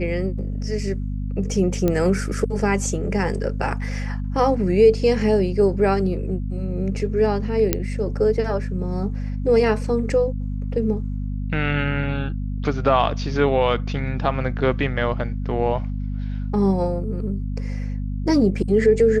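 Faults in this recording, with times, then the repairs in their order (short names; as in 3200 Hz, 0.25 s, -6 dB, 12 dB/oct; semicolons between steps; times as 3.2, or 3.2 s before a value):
hum 50 Hz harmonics 5 -26 dBFS
1.88 pop -9 dBFS
7.73 pop -3 dBFS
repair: de-click; de-hum 50 Hz, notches 5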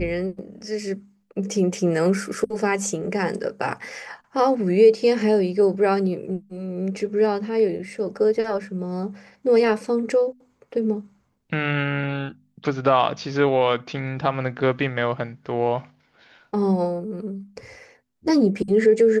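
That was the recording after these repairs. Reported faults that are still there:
none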